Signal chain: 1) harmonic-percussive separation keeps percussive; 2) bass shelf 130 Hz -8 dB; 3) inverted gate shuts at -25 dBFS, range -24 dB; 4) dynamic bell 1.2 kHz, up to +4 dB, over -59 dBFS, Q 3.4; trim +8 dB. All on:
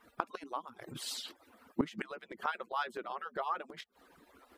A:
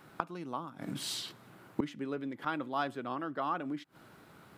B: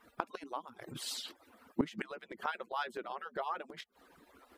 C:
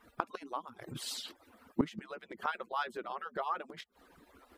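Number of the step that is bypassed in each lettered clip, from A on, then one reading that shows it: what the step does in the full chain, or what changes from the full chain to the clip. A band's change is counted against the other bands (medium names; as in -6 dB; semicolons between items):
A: 1, 125 Hz band +4.0 dB; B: 4, 1 kHz band -2.0 dB; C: 2, 125 Hz band +3.0 dB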